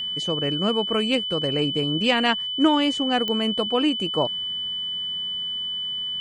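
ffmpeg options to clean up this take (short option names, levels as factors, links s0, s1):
-af "adeclick=t=4,bandreject=f=3000:w=30"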